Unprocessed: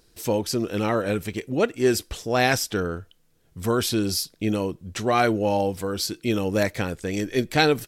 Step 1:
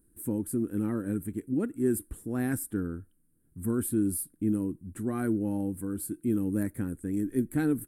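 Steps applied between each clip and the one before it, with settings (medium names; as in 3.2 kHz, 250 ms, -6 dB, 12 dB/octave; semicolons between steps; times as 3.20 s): FFT filter 160 Hz 0 dB, 290 Hz +7 dB, 430 Hz -8 dB, 650 Hz -17 dB, 1.6 kHz -9 dB, 2.5 kHz -22 dB, 3.8 kHz -26 dB, 5.8 kHz -28 dB, 9.3 kHz +7 dB, 15 kHz -2 dB; trim -5.5 dB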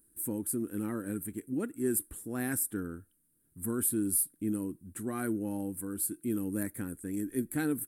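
tilt EQ +2 dB/octave; trim -1 dB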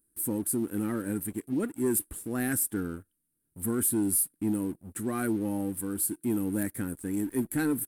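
waveshaping leveller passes 2; trim -3 dB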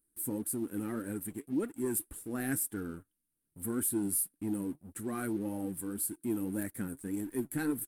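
flange 1.8 Hz, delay 1.3 ms, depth 6.5 ms, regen +60%; trim -1 dB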